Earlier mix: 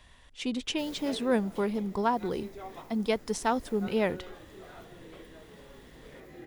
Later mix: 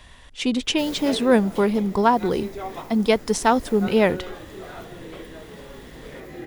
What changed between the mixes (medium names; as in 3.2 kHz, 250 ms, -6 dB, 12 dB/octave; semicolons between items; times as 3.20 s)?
speech +9.5 dB; background +10.5 dB